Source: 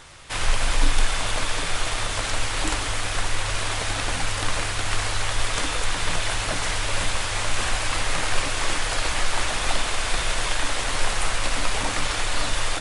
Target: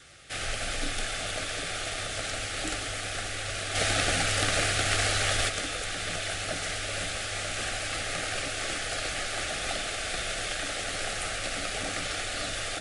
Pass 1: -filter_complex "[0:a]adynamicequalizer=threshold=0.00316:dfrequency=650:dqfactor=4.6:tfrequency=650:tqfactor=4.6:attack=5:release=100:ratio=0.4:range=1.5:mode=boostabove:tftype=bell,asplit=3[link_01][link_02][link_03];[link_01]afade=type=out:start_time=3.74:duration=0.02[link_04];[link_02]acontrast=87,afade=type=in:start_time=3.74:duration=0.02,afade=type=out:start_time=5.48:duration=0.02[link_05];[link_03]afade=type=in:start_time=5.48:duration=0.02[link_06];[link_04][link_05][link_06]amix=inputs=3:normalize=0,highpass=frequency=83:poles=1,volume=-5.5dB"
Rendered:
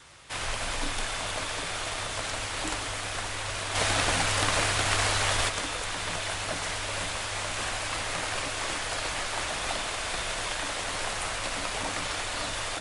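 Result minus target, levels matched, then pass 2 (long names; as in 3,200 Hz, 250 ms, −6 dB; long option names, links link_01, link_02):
1,000 Hz band +3.5 dB
-filter_complex "[0:a]adynamicequalizer=threshold=0.00316:dfrequency=650:dqfactor=4.6:tfrequency=650:tqfactor=4.6:attack=5:release=100:ratio=0.4:range=1.5:mode=boostabove:tftype=bell,asuperstop=centerf=980:order=4:qfactor=2.5,asplit=3[link_01][link_02][link_03];[link_01]afade=type=out:start_time=3.74:duration=0.02[link_04];[link_02]acontrast=87,afade=type=in:start_time=3.74:duration=0.02,afade=type=out:start_time=5.48:duration=0.02[link_05];[link_03]afade=type=in:start_time=5.48:duration=0.02[link_06];[link_04][link_05][link_06]amix=inputs=3:normalize=0,highpass=frequency=83:poles=1,volume=-5.5dB"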